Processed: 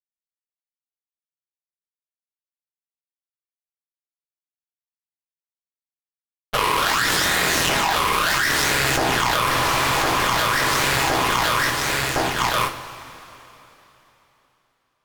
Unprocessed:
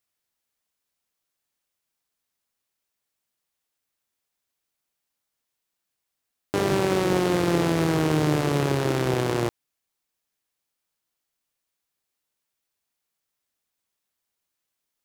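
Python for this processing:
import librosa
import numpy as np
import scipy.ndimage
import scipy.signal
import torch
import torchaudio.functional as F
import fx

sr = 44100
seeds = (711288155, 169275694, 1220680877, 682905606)

p1 = fx.spec_flatten(x, sr, power=0.57)
p2 = fx.peak_eq(p1, sr, hz=2200.0, db=-8.0, octaves=0.34)
p3 = fx.filter_lfo_bandpass(p2, sr, shape='saw_up', hz=0.78, low_hz=740.0, high_hz=3200.0, q=2.9)
p4 = fx.high_shelf_res(p3, sr, hz=2900.0, db=-11.0, q=3.0)
p5 = fx.fuzz(p4, sr, gain_db=46.0, gate_db=-54.0)
p6 = fx.phaser_stages(p5, sr, stages=8, low_hz=200.0, high_hz=4900.0, hz=0.71, feedback_pct=50)
p7 = fx.cheby_harmonics(p6, sr, harmonics=(3, 6), levels_db=(-11, -23), full_scale_db=-6.5)
p8 = p7 + fx.echo_feedback(p7, sr, ms=1062, feedback_pct=45, wet_db=-21.0, dry=0)
p9 = fx.rev_double_slope(p8, sr, seeds[0], early_s=0.36, late_s=3.5, knee_db=-17, drr_db=4.0)
p10 = fx.env_flatten(p9, sr, amount_pct=100)
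y = p10 * librosa.db_to_amplitude(-2.0)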